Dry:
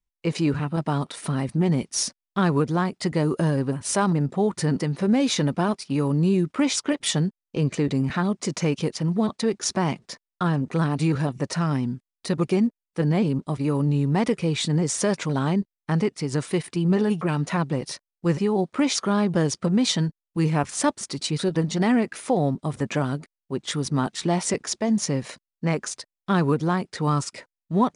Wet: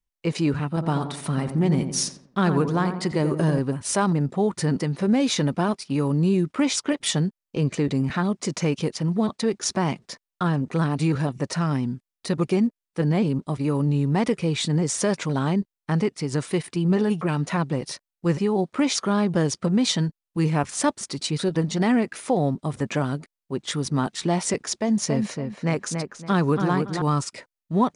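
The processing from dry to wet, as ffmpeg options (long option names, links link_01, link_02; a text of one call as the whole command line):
ffmpeg -i in.wav -filter_complex "[0:a]asettb=1/sr,asplit=3[link_01][link_02][link_03];[link_01]atrim=end=0.704[link_04];[link_02]atrim=start=0.7:end=3.59,asetpts=PTS-STARTPTS,afade=type=in:duration=0.004:curve=qsin,afade=type=out:start_time=2.886:duration=0.004:curve=qsin,asplit=2[link_05][link_06];[link_06]adelay=87,lowpass=frequency=1400:poles=1,volume=-7dB,asplit=2[link_07][link_08];[link_08]adelay=87,lowpass=frequency=1400:poles=1,volume=0.49,asplit=2[link_09][link_10];[link_10]adelay=87,lowpass=frequency=1400:poles=1,volume=0.49,asplit=2[link_11][link_12];[link_12]adelay=87,lowpass=frequency=1400:poles=1,volume=0.49,asplit=2[link_13][link_14];[link_14]adelay=87,lowpass=frequency=1400:poles=1,volume=0.49,asplit=2[link_15][link_16];[link_16]adelay=87,lowpass=frequency=1400:poles=1,volume=0.49[link_17];[link_05][link_07][link_09][link_11][link_13][link_15][link_17]amix=inputs=7:normalize=0,atrim=end_sample=127449[link_18];[link_03]atrim=start=3.586[link_19];[link_04][link_18]acrossfade=duration=0.004:curve1=hsin:curve2=qsin[link_20];[link_20][link_19]acrossfade=duration=0.004:curve1=qsin:curve2=hsin,asettb=1/sr,asplit=3[link_21][link_22][link_23];[link_21]atrim=end=24.794[link_24];[link_22]atrim=start=24.79:end=27.02,asetpts=PTS-STARTPTS,afade=type=in:duration=0.004:curve=qsin,afade=type=out:start_time=2.226:duration=0.004:curve=qsin,asplit=2[link_25][link_26];[link_26]adelay=281,lowpass=frequency=2400:poles=1,volume=-5dB,asplit=2[link_27][link_28];[link_28]adelay=281,lowpass=frequency=2400:poles=1,volume=0.29,asplit=2[link_29][link_30];[link_30]adelay=281,lowpass=frequency=2400:poles=1,volume=0.29,asplit=2[link_31][link_32];[link_32]adelay=281,lowpass=frequency=2400:poles=1,volume=0.29[link_33];[link_25][link_27][link_29][link_31][link_33]amix=inputs=5:normalize=0,atrim=end_sample=98343[link_34];[link_23]atrim=start=27.016[link_35];[link_24][link_34]acrossfade=duration=0.004:curve1=hsin:curve2=qsin[link_36];[link_36][link_35]acrossfade=duration=0.004:curve1=qsin:curve2=hsin" out.wav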